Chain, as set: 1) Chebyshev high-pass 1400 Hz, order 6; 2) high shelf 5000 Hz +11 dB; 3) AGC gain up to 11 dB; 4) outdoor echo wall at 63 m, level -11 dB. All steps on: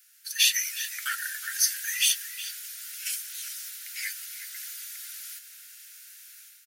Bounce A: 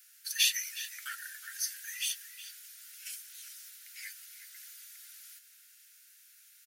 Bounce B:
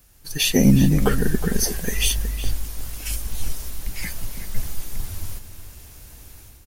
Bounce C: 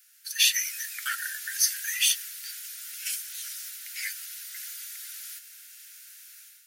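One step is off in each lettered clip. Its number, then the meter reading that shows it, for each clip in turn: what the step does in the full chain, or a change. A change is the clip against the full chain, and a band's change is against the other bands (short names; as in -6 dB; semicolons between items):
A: 3, momentary loudness spread change -2 LU; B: 1, 1 kHz band +8.5 dB; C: 4, echo-to-direct -12.0 dB to none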